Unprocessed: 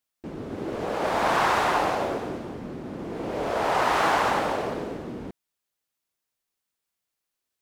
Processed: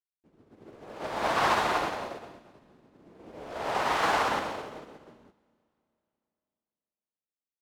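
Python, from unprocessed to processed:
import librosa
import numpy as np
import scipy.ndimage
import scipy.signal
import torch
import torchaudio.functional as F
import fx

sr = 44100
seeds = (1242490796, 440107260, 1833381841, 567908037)

y = fx.dynamic_eq(x, sr, hz=3800.0, q=0.76, threshold_db=-38.0, ratio=4.0, max_db=3)
y = fx.rev_schroeder(y, sr, rt60_s=3.0, comb_ms=27, drr_db=5.0)
y = fx.upward_expand(y, sr, threshold_db=-38.0, expansion=2.5)
y = y * librosa.db_to_amplitude(-2.5)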